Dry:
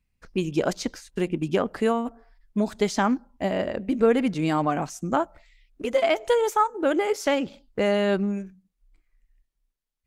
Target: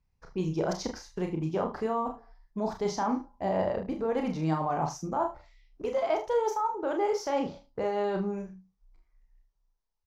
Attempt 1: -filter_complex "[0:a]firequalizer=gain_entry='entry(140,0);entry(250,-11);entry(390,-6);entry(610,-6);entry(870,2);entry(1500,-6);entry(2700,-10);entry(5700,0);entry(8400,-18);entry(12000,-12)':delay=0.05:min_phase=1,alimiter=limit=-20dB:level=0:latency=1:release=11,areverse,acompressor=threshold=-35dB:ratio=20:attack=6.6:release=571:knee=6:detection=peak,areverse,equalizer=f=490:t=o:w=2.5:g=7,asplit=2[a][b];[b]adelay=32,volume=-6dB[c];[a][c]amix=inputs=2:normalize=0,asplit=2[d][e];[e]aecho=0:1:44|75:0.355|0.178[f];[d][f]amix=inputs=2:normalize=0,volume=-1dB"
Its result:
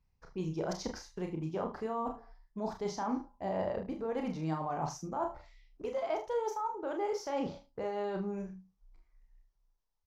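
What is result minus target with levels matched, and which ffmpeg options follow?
compressor: peak gain reduction +6.5 dB
-filter_complex "[0:a]firequalizer=gain_entry='entry(140,0);entry(250,-11);entry(390,-6);entry(610,-6);entry(870,2);entry(1500,-6);entry(2700,-10);entry(5700,0);entry(8400,-18);entry(12000,-12)':delay=0.05:min_phase=1,alimiter=limit=-20dB:level=0:latency=1:release=11,areverse,acompressor=threshold=-28dB:ratio=20:attack=6.6:release=571:knee=6:detection=peak,areverse,equalizer=f=490:t=o:w=2.5:g=7,asplit=2[a][b];[b]adelay=32,volume=-6dB[c];[a][c]amix=inputs=2:normalize=0,asplit=2[d][e];[e]aecho=0:1:44|75:0.355|0.178[f];[d][f]amix=inputs=2:normalize=0,volume=-1dB"

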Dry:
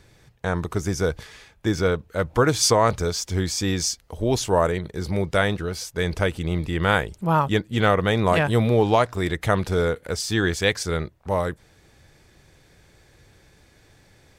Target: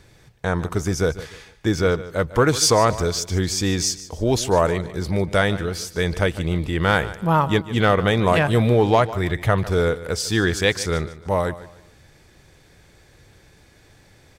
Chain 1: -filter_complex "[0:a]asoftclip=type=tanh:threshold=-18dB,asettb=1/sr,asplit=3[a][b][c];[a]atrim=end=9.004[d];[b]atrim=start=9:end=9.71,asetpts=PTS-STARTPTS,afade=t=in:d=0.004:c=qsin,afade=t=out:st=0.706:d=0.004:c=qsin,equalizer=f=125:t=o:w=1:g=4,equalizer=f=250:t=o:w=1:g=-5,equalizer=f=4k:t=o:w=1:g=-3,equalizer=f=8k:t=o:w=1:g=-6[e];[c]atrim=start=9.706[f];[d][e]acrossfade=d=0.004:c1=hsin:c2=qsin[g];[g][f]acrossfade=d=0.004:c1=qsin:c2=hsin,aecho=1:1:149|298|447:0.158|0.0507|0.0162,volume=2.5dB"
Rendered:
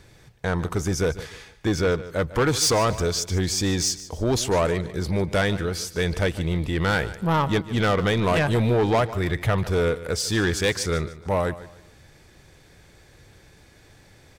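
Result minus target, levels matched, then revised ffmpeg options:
soft clip: distortion +15 dB
-filter_complex "[0:a]asoftclip=type=tanh:threshold=-6.5dB,asettb=1/sr,asplit=3[a][b][c];[a]atrim=end=9.004[d];[b]atrim=start=9:end=9.71,asetpts=PTS-STARTPTS,afade=t=in:d=0.004:c=qsin,afade=t=out:st=0.706:d=0.004:c=qsin,equalizer=f=125:t=o:w=1:g=4,equalizer=f=250:t=o:w=1:g=-5,equalizer=f=4k:t=o:w=1:g=-3,equalizer=f=8k:t=o:w=1:g=-6[e];[c]atrim=start=9.706[f];[d][e]acrossfade=d=0.004:c1=hsin:c2=qsin[g];[g][f]acrossfade=d=0.004:c1=qsin:c2=hsin,aecho=1:1:149|298|447:0.158|0.0507|0.0162,volume=2.5dB"

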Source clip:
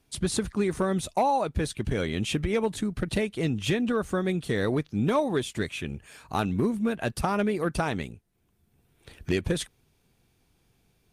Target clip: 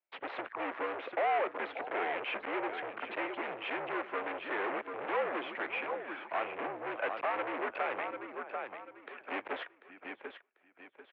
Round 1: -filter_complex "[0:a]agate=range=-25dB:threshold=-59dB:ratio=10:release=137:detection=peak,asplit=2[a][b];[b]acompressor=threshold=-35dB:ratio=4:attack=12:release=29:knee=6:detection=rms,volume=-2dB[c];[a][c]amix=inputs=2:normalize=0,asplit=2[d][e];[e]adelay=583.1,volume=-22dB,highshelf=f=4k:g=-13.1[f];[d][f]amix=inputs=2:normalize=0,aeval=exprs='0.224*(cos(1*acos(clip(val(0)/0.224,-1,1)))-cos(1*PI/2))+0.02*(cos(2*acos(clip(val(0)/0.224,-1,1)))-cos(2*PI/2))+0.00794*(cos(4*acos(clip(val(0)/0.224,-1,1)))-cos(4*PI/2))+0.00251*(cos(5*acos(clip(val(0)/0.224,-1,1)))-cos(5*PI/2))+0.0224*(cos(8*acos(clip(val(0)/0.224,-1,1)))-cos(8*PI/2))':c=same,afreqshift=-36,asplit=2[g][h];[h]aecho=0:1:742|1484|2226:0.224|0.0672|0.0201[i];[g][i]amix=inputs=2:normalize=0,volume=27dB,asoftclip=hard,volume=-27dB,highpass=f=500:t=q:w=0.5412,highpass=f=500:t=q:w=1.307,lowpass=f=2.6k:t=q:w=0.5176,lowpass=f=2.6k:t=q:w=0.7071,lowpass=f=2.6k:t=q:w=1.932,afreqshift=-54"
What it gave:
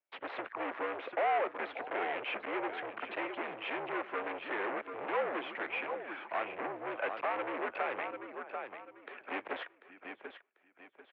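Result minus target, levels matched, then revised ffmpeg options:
compressor: peak gain reduction +8 dB
-filter_complex "[0:a]agate=range=-25dB:threshold=-59dB:ratio=10:release=137:detection=peak,asplit=2[a][b];[b]acompressor=threshold=-24dB:ratio=4:attack=12:release=29:knee=6:detection=rms,volume=-2dB[c];[a][c]amix=inputs=2:normalize=0,asplit=2[d][e];[e]adelay=583.1,volume=-22dB,highshelf=f=4k:g=-13.1[f];[d][f]amix=inputs=2:normalize=0,aeval=exprs='0.224*(cos(1*acos(clip(val(0)/0.224,-1,1)))-cos(1*PI/2))+0.02*(cos(2*acos(clip(val(0)/0.224,-1,1)))-cos(2*PI/2))+0.00794*(cos(4*acos(clip(val(0)/0.224,-1,1)))-cos(4*PI/2))+0.00251*(cos(5*acos(clip(val(0)/0.224,-1,1)))-cos(5*PI/2))+0.0224*(cos(8*acos(clip(val(0)/0.224,-1,1)))-cos(8*PI/2))':c=same,afreqshift=-36,asplit=2[g][h];[h]aecho=0:1:742|1484|2226:0.224|0.0672|0.0201[i];[g][i]amix=inputs=2:normalize=0,volume=27dB,asoftclip=hard,volume=-27dB,highpass=f=500:t=q:w=0.5412,highpass=f=500:t=q:w=1.307,lowpass=f=2.6k:t=q:w=0.5176,lowpass=f=2.6k:t=q:w=0.7071,lowpass=f=2.6k:t=q:w=1.932,afreqshift=-54"

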